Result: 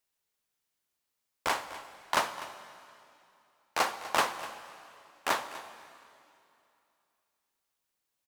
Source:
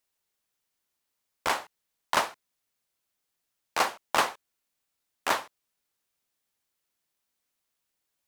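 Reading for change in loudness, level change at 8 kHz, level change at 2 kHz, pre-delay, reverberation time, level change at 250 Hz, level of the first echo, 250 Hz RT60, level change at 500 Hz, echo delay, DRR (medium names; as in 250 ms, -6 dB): -3.0 dB, -2.0 dB, -2.0 dB, 6 ms, 2.7 s, -2.0 dB, -16.0 dB, 2.8 s, -2.0 dB, 248 ms, 10.0 dB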